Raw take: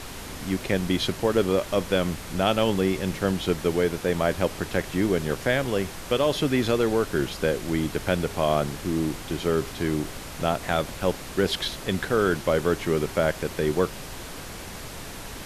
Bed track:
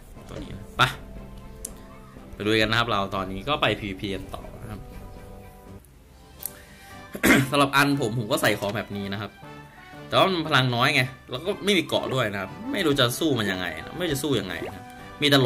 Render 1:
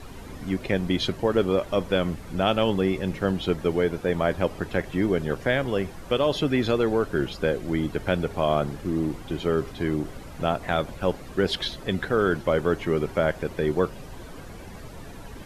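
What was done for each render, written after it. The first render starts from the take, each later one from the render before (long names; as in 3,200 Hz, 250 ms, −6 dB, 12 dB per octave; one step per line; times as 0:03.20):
broadband denoise 12 dB, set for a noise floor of −38 dBFS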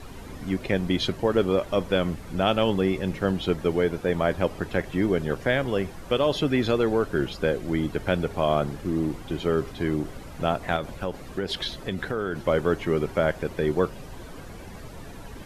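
0:10.76–0:12.40: downward compressor 4 to 1, threshold −24 dBFS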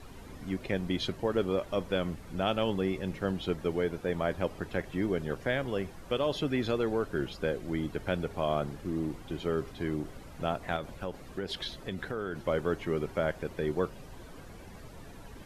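level −7 dB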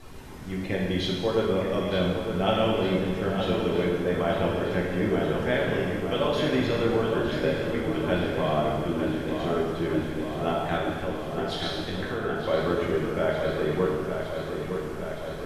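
delay with a low-pass on its return 912 ms, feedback 70%, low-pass 3,800 Hz, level −7 dB
reverb whose tail is shaped and stops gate 490 ms falling, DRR −3.5 dB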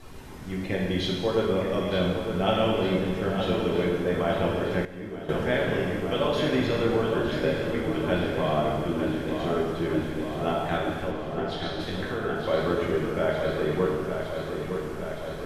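0:04.85–0:05.29: clip gain −11.5 dB
0:11.10–0:11.79: high-shelf EQ 6,800 Hz → 3,600 Hz −10.5 dB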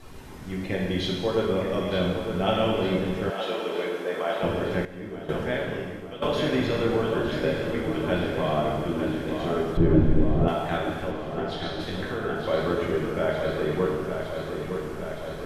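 0:03.30–0:04.43: high-pass filter 420 Hz
0:05.18–0:06.22: fade out, to −13.5 dB
0:09.77–0:10.48: spectral tilt −4 dB per octave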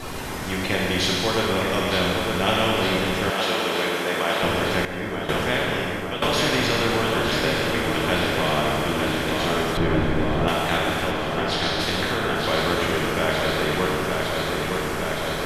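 every bin compressed towards the loudest bin 2 to 1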